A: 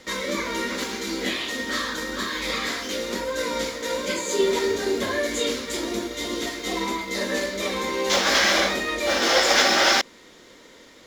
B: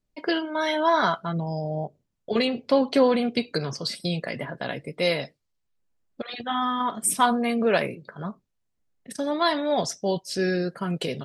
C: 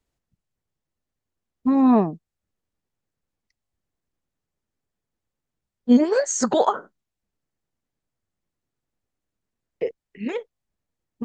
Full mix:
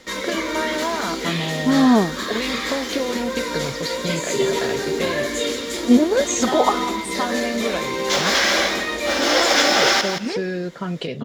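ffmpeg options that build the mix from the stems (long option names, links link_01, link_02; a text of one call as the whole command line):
ffmpeg -i stem1.wav -i stem2.wav -i stem3.wav -filter_complex "[0:a]volume=1dB,asplit=2[link_01][link_02];[link_02]volume=-8.5dB[link_03];[1:a]lowpass=4400,acompressor=threshold=-25dB:ratio=6,volume=3dB[link_04];[2:a]volume=1.5dB[link_05];[link_03]aecho=0:1:171|342|513:1|0.21|0.0441[link_06];[link_01][link_04][link_05][link_06]amix=inputs=4:normalize=0" out.wav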